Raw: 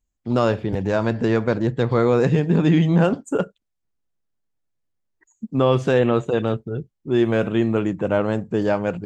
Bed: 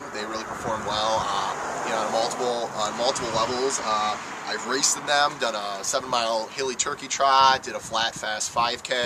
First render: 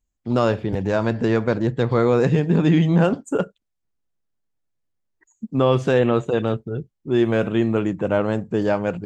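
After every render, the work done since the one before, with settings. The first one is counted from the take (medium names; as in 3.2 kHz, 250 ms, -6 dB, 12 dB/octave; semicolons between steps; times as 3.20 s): no audible change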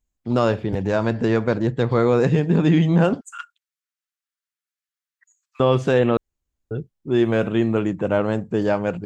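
3.21–5.60 s: steep high-pass 1.2 kHz 48 dB/octave; 6.17–6.71 s: room tone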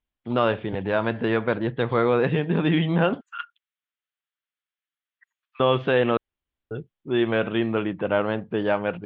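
elliptic low-pass 3.4 kHz, stop band 80 dB; tilt EQ +2 dB/octave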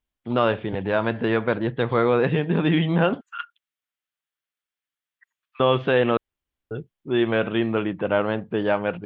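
trim +1 dB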